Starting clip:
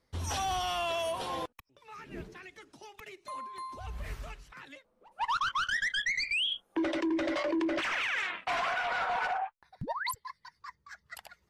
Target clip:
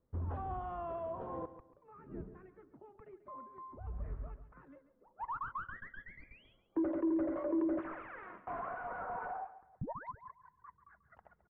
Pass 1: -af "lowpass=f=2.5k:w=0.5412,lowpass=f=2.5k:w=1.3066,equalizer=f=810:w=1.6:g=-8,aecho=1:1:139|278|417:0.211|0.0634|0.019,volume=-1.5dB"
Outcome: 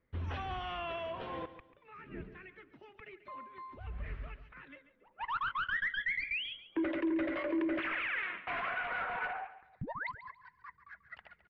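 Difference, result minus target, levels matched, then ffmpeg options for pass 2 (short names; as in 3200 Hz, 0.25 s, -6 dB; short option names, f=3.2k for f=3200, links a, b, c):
2000 Hz band +11.0 dB
-af "lowpass=f=1.1k:w=0.5412,lowpass=f=1.1k:w=1.3066,equalizer=f=810:w=1.6:g=-8,aecho=1:1:139|278|417:0.211|0.0634|0.019,volume=-1.5dB"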